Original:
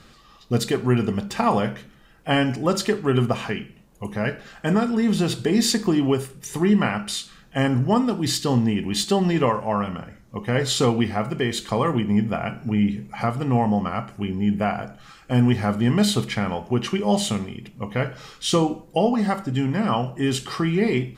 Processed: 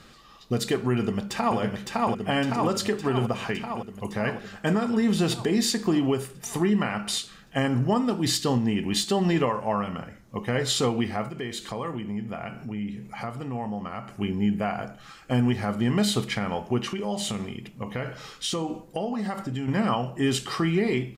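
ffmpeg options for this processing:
ffmpeg -i in.wav -filter_complex "[0:a]asplit=2[link_01][link_02];[link_02]afade=type=in:start_time=0.95:duration=0.01,afade=type=out:start_time=1.58:duration=0.01,aecho=0:1:560|1120|1680|2240|2800|3360|3920|4480|5040|5600|6160|6720:0.668344|0.467841|0.327489|0.229242|0.160469|0.112329|0.07863|0.055041|0.0385287|0.0269701|0.0188791|0.0132153[link_03];[link_01][link_03]amix=inputs=2:normalize=0,asettb=1/sr,asplit=3[link_04][link_05][link_06];[link_04]atrim=end=11.284[link_07];[link_05]atrim=start=11.28:end=14.18,asetpts=PTS-STARTPTS,afade=type=in:duration=0.004:curve=qsin,afade=type=out:start_time=2.896:duration=0.004:curve=qsin,acompressor=threshold=-35dB:ratio=2:attack=3.2:release=140:knee=1:detection=peak[link_08];[link_06]atrim=start=14.176[link_09];[link_07][link_08]acrossfade=duration=0.004:curve1=hsin:curve2=qsin[link_10];[link_10][link_09]acrossfade=duration=0.004:curve1=qsin:curve2=hsin,asettb=1/sr,asplit=3[link_11][link_12][link_13];[link_11]atrim=end=16.834[link_14];[link_12]atrim=start=16.83:end=19.68,asetpts=PTS-STARTPTS,afade=type=in:duration=0.004:curve=qsin,afade=type=out:start_time=2.846:duration=0.004:curve=qsin,acompressor=threshold=-25dB:ratio=5:attack=3.2:release=140:knee=1:detection=peak[link_15];[link_13]atrim=start=19.676[link_16];[link_14][link_15]acrossfade=duration=0.004:curve1=hsin:curve2=qsin[link_17];[link_17][link_16]acrossfade=duration=0.004:curve1=qsin:curve2=hsin,lowshelf=frequency=130:gain=-4.5,alimiter=limit=-14.5dB:level=0:latency=1:release=196" out.wav

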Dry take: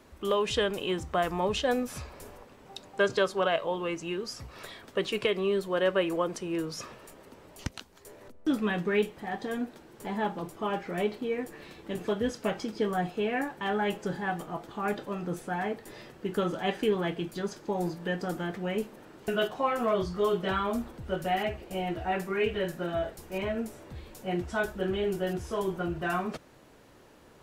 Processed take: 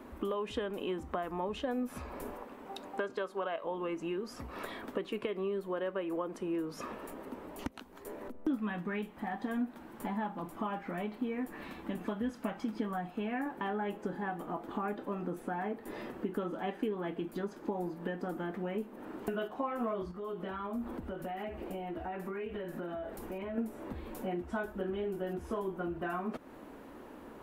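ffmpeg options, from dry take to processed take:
ffmpeg -i in.wav -filter_complex "[0:a]asettb=1/sr,asplit=3[link_01][link_02][link_03];[link_01]atrim=end=2.344[link_04];[link_02]atrim=start=2.34:end=3.64,asetpts=PTS-STARTPTS,afade=type=in:duration=0.004:curve=qsin,afade=type=out:start_time=1.296:duration=0.004:curve=qsin,lowshelf=frequency=230:gain=-7.5[link_05];[link_03]atrim=start=3.636[link_06];[link_04][link_05]acrossfade=duration=0.004:curve1=hsin:curve2=qsin[link_07];[link_07][link_06]acrossfade=duration=0.004:curve1=qsin:curve2=hsin,asettb=1/sr,asplit=3[link_08][link_09][link_10];[link_08]atrim=end=8.554[link_11];[link_09]atrim=start=8.55:end=13.46,asetpts=PTS-STARTPTS,afade=type=in:duration=0.004:curve=qsin,afade=type=out:start_time=4.906:duration=0.004:curve=qsin,equalizer=frequency=410:width=1.6:gain=-9[link_12];[link_10]atrim=start=13.456[link_13];[link_11][link_12]acrossfade=duration=0.004:curve1=hsin:curve2=qsin[link_14];[link_14][link_13]acrossfade=duration=0.004:curve1=qsin:curve2=hsin,asettb=1/sr,asplit=3[link_15][link_16][link_17];[link_15]atrim=end=20.114[link_18];[link_16]atrim=start=20.11:end=23.58,asetpts=PTS-STARTPTS,afade=type=in:duration=0.004:curve=qsin,afade=type=out:start_time=3.466:duration=0.004:curve=qsin,acompressor=threshold=-42dB:ratio=4:attack=3.2:release=140:knee=1:detection=peak[link_19];[link_17]atrim=start=23.576[link_20];[link_18][link_19]acrossfade=duration=0.004:curve1=hsin:curve2=qsin[link_21];[link_21][link_20]acrossfade=duration=0.004:curve1=qsin:curve2=hsin,equalizer=frequency=5200:width_type=o:width=1.5:gain=-9.5,acompressor=threshold=-42dB:ratio=4,equalizer=frequency=125:width_type=o:width=1:gain=-9,equalizer=frequency=250:width_type=o:width=1:gain=9,equalizer=frequency=1000:width_type=o:width=1:gain=4,equalizer=frequency=8000:width_type=o:width=1:gain=-3,volume=3.5dB" out.wav

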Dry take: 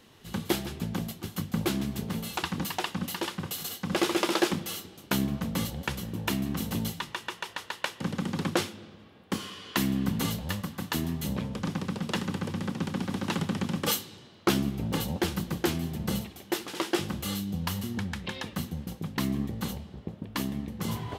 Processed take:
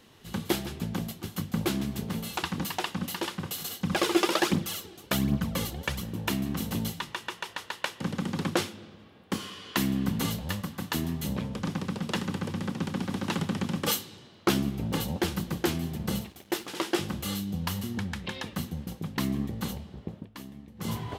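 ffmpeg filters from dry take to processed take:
ffmpeg -i in.wav -filter_complex "[0:a]asettb=1/sr,asplit=3[link_01][link_02][link_03];[link_01]atrim=end=3.804[link_04];[link_02]atrim=start=3.8:end=6.02,asetpts=PTS-STARTPTS,afade=type=in:duration=0.004:curve=qsin,afade=type=out:start_time=2.216:duration=0.004:curve=qsin,aphaser=in_gain=1:out_gain=1:delay=3:decay=0.5:speed=1.3:type=triangular[link_05];[link_03]atrim=start=6.016[link_06];[link_04][link_05]acrossfade=duration=0.004:curve1=hsin:curve2=qsin[link_07];[link_07][link_06]acrossfade=duration=0.004:curve1=qsin:curve2=hsin,asettb=1/sr,asplit=3[link_08][link_09][link_10];[link_08]atrim=end=15.974[link_11];[link_09]atrim=start=15.97:end=16.68,asetpts=PTS-STARTPTS,afade=type=in:duration=0.004:curve=qsin,afade=type=out:start_time=0.706:duration=0.004:curve=qsin,aeval=exprs='sgn(val(0))*max(abs(val(0))-0.002,0)':channel_layout=same[link_12];[link_10]atrim=start=16.676[link_13];[link_11][link_12]acrossfade=duration=0.004:curve1=hsin:curve2=qsin[link_14];[link_14][link_13]acrossfade=duration=0.004:curve1=qsin:curve2=hsin,asplit=3[link_15][link_16][link_17];[link_15]atrim=end=20.3,asetpts=PTS-STARTPTS,afade=type=out:start_time=20.17:duration=0.13:silence=0.251189[link_18];[link_16]atrim=start=20.3:end=20.75,asetpts=PTS-STARTPTS,volume=-12dB[link_19];[link_17]atrim=start=20.75,asetpts=PTS-STARTPTS,afade=type=in:duration=0.13:silence=0.251189[link_20];[link_18][link_19][link_20]concat=n=3:v=0:a=1" out.wav

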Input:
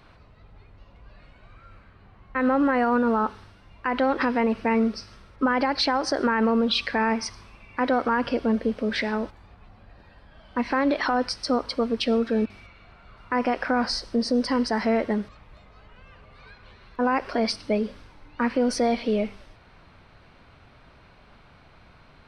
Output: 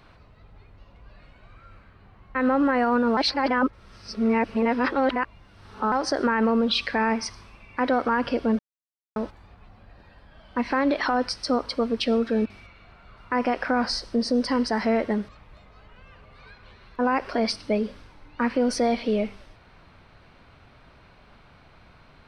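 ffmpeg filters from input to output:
ffmpeg -i in.wav -filter_complex "[0:a]asplit=5[link_01][link_02][link_03][link_04][link_05];[link_01]atrim=end=3.172[link_06];[link_02]atrim=start=3.168:end=5.922,asetpts=PTS-STARTPTS,areverse[link_07];[link_03]atrim=start=5.918:end=8.59,asetpts=PTS-STARTPTS,afade=type=out:start_time=2.668:duration=0.004:curve=hsin[link_08];[link_04]atrim=start=8.59:end=9.16,asetpts=PTS-STARTPTS,volume=0[link_09];[link_05]atrim=start=9.16,asetpts=PTS-STARTPTS,afade=type=in:duration=0.004:curve=hsin[link_10];[link_06][link_07]acrossfade=duration=0.004:curve1=hsin:curve2=hsin[link_11];[link_08][link_09][link_10]concat=n=3:v=0:a=1[link_12];[link_11][link_12]acrossfade=duration=0.004:curve1=hsin:curve2=hsin" out.wav

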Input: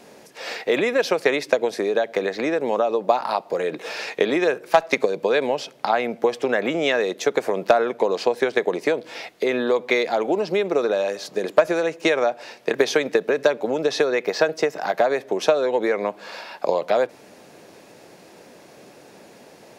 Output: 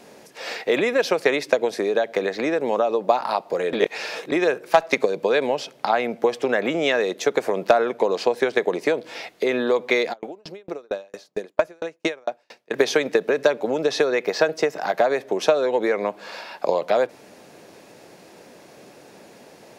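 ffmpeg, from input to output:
ffmpeg -i in.wav -filter_complex "[0:a]asplit=3[link_01][link_02][link_03];[link_01]afade=type=out:start_time=10.12:duration=0.02[link_04];[link_02]aeval=exprs='val(0)*pow(10,-40*if(lt(mod(4.4*n/s,1),2*abs(4.4)/1000),1-mod(4.4*n/s,1)/(2*abs(4.4)/1000),(mod(4.4*n/s,1)-2*abs(4.4)/1000)/(1-2*abs(4.4)/1000))/20)':channel_layout=same,afade=type=in:start_time=10.12:duration=0.02,afade=type=out:start_time=12.7:duration=0.02[link_05];[link_03]afade=type=in:start_time=12.7:duration=0.02[link_06];[link_04][link_05][link_06]amix=inputs=3:normalize=0,asplit=3[link_07][link_08][link_09];[link_07]atrim=end=3.732[link_10];[link_08]atrim=start=3.728:end=4.322,asetpts=PTS-STARTPTS,areverse[link_11];[link_09]atrim=start=4.318[link_12];[link_10][link_11]acrossfade=duration=0.004:curve1=hsin:curve2=hsin[link_13];[link_13][link_12]acrossfade=duration=0.004:curve1=hsin:curve2=hsin" out.wav

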